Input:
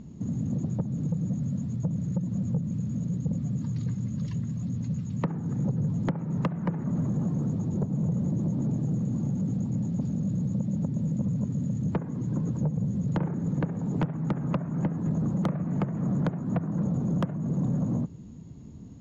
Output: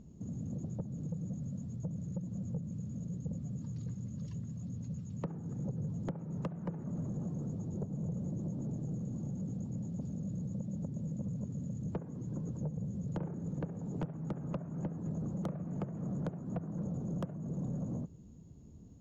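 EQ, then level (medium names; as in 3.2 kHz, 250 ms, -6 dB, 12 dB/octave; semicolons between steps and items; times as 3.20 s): graphic EQ 125/250/1000/2000/4000 Hz -5/-6/-6/-9/-6 dB; -4.5 dB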